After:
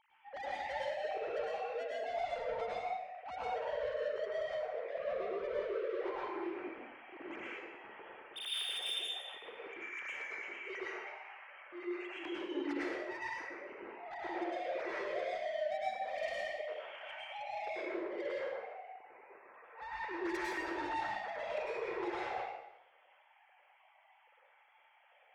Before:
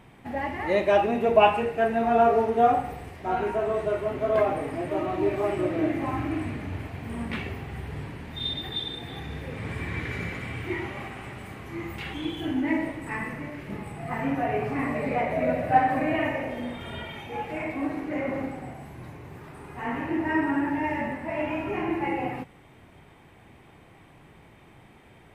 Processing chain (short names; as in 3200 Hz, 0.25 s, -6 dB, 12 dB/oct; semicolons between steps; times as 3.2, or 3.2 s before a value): sine-wave speech; compressor 16:1, threshold -26 dBFS, peak gain reduction 20 dB; soft clip -33.5 dBFS, distortion -9 dB; plate-style reverb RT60 0.78 s, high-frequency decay 0.95×, pre-delay 90 ms, DRR -6 dB; gain -8 dB